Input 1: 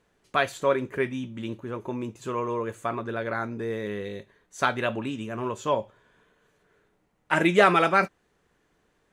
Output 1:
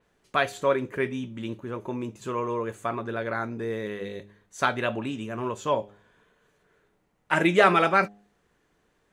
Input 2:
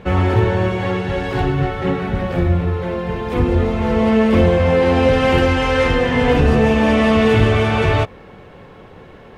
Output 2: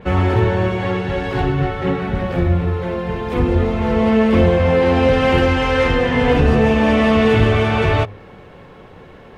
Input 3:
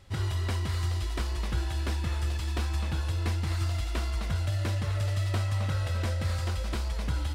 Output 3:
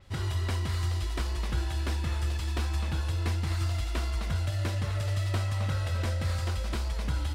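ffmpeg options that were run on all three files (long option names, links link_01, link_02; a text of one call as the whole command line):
ffmpeg -i in.wav -af "bandreject=frequency=102.2:width_type=h:width=4,bandreject=frequency=204.4:width_type=h:width=4,bandreject=frequency=306.6:width_type=h:width=4,bandreject=frequency=408.8:width_type=h:width=4,bandreject=frequency=511:width_type=h:width=4,bandreject=frequency=613.2:width_type=h:width=4,bandreject=frequency=715.4:width_type=h:width=4,bandreject=frequency=817.6:width_type=h:width=4,adynamicequalizer=threshold=0.0126:dfrequency=5300:dqfactor=0.7:tfrequency=5300:tqfactor=0.7:attack=5:release=100:ratio=0.375:range=2:mode=cutabove:tftype=highshelf" out.wav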